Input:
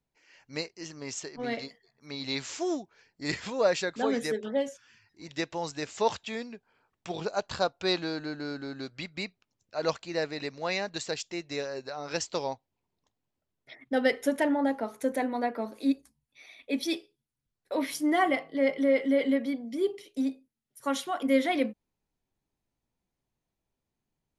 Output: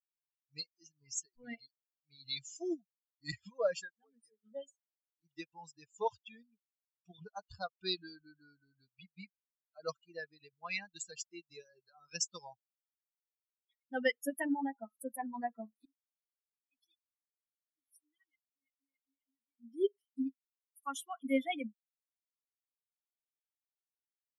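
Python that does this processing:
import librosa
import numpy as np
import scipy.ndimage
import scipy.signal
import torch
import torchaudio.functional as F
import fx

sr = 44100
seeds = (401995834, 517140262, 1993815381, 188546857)

y = fx.tone_stack(x, sr, knobs='6-0-2', at=(15.85, 19.6))
y = fx.edit(y, sr, fx.fade_down_up(start_s=3.76, length_s=0.81, db=-10.0, fade_s=0.2), tone=tone)
y = fx.bin_expand(y, sr, power=3.0)
y = fx.high_shelf(y, sr, hz=4700.0, db=7.0)
y = fx.rider(y, sr, range_db=3, speed_s=2.0)
y = y * librosa.db_to_amplitude(-3.0)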